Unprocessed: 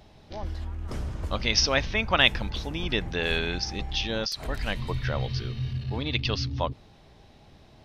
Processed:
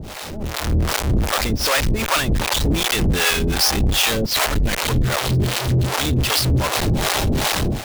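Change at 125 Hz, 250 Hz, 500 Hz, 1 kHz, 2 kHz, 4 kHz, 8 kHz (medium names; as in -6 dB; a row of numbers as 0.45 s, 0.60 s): +11.0 dB, +11.5 dB, +7.5 dB, +10.0 dB, +6.5 dB, +7.5 dB, +15.0 dB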